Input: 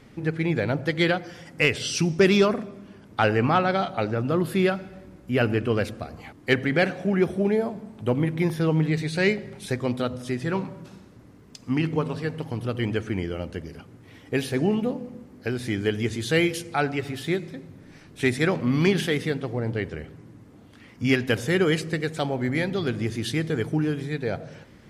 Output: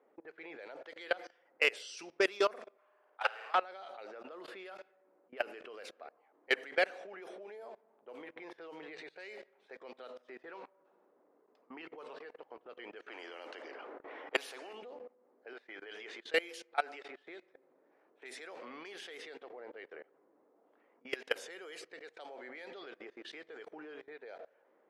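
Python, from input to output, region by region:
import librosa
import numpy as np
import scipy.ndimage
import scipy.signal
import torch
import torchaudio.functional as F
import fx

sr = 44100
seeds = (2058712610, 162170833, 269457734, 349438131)

y = fx.chain(x, sr, fx.highpass(hz=870.0, slope=12),
    fx.room_flutter(wall_m=9.0, rt60_s=1.2), at=(2.77, 3.55))
y = fx.chain(y, sr, fx.highpass_res(hz=290.0, q=3.2),
    fx.high_shelf(hz=3900.0, db=-12.0),
    fx.spectral_comp(ratio=2.0), at=(13.08, 14.73))
y = fx.chain(y, sr, fx.highpass(hz=640.0, slope=6),
    fx.high_shelf(hz=6600.0, db=-5.5),
    fx.sustainer(db_per_s=47.0), at=(15.53, 16.24))
y = fx.chain(y, sr, fx.high_shelf(hz=6700.0, db=7.5),
    fx.band_squash(depth_pct=40), at=(17.48, 18.25))
y = scipy.signal.sosfilt(scipy.signal.butter(4, 450.0, 'highpass', fs=sr, output='sos'), y)
y = fx.env_lowpass(y, sr, base_hz=730.0, full_db=-22.5)
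y = fx.level_steps(y, sr, step_db=22)
y = y * librosa.db_to_amplitude(-4.0)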